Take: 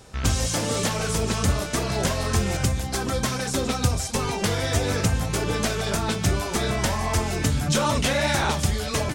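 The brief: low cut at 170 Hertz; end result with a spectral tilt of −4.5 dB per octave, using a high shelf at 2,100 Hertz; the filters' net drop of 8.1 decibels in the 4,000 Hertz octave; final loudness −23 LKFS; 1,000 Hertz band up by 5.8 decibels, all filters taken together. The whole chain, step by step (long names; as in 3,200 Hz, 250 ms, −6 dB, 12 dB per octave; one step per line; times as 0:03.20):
high-pass filter 170 Hz
parametric band 1,000 Hz +8.5 dB
high-shelf EQ 2,100 Hz −4 dB
parametric band 4,000 Hz −7 dB
level +2 dB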